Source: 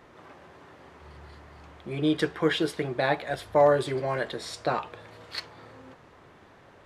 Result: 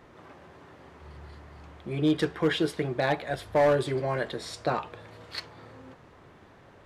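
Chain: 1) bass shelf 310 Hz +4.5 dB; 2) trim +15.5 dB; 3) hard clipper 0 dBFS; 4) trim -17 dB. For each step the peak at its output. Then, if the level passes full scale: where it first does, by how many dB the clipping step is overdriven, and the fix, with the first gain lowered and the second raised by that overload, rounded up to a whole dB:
-9.5 dBFS, +6.0 dBFS, 0.0 dBFS, -17.0 dBFS; step 2, 6.0 dB; step 2 +9.5 dB, step 4 -11 dB

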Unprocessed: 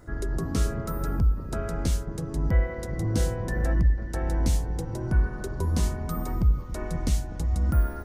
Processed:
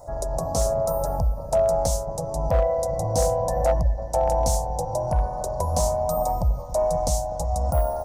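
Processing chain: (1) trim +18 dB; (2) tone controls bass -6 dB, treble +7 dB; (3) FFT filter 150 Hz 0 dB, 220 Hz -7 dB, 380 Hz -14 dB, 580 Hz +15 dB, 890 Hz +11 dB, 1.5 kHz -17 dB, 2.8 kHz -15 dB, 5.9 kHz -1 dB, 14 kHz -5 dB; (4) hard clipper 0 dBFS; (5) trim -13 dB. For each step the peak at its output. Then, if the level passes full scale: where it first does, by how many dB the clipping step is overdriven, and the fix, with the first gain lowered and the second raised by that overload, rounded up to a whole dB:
+6.0 dBFS, +4.0 dBFS, +5.0 dBFS, 0.0 dBFS, -13.0 dBFS; step 1, 5.0 dB; step 1 +13 dB, step 5 -8 dB

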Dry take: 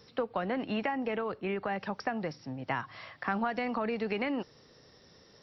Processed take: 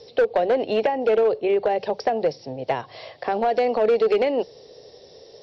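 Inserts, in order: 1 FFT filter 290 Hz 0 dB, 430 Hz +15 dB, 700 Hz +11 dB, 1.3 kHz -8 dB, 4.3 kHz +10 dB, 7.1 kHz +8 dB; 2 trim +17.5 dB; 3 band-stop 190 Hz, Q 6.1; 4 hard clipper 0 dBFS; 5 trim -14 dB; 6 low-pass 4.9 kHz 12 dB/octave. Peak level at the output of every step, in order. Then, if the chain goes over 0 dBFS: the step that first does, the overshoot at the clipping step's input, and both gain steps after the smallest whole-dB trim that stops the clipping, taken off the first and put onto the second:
-9.5 dBFS, +8.0 dBFS, +8.0 dBFS, 0.0 dBFS, -14.0 dBFS, -13.5 dBFS; step 2, 8.0 dB; step 2 +9.5 dB, step 5 -6 dB

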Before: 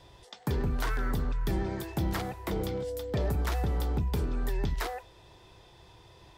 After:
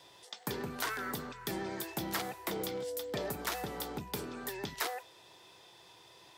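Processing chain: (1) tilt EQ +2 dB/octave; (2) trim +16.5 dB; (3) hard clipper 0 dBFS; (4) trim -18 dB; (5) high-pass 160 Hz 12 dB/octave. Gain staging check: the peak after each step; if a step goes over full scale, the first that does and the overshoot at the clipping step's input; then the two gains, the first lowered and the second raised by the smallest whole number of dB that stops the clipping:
-18.0 dBFS, -1.5 dBFS, -1.5 dBFS, -19.5 dBFS, -19.0 dBFS; nothing clips

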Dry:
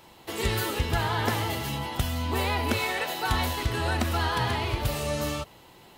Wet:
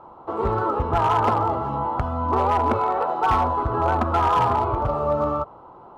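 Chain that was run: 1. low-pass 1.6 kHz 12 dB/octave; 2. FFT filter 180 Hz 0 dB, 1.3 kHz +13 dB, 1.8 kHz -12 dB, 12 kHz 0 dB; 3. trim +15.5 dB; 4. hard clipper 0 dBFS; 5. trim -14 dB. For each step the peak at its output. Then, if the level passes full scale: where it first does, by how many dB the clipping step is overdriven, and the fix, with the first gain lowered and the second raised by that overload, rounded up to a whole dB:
-14.0 dBFS, -8.0 dBFS, +7.5 dBFS, 0.0 dBFS, -14.0 dBFS; step 3, 7.5 dB; step 3 +7.5 dB, step 5 -6 dB

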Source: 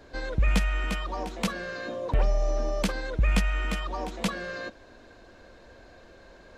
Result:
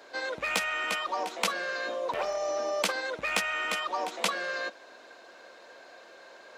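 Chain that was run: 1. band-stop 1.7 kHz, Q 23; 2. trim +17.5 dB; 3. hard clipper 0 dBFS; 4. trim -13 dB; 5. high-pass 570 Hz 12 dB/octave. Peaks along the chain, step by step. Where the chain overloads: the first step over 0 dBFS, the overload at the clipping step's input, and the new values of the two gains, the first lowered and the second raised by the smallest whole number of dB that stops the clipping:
-12.0 dBFS, +5.5 dBFS, 0.0 dBFS, -13.0 dBFS, -11.5 dBFS; step 2, 5.5 dB; step 2 +11.5 dB, step 4 -7 dB

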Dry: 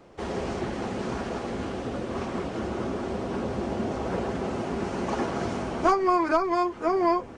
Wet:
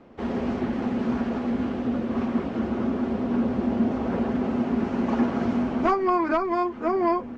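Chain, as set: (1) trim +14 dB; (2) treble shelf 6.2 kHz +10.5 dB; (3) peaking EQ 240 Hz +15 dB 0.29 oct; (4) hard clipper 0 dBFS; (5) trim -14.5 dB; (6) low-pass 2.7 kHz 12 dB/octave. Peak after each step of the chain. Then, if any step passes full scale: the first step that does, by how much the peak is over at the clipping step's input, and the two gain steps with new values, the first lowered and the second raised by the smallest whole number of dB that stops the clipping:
+3.5 dBFS, +4.0 dBFS, +5.0 dBFS, 0.0 dBFS, -14.5 dBFS, -14.0 dBFS; step 1, 5.0 dB; step 1 +9 dB, step 5 -9.5 dB

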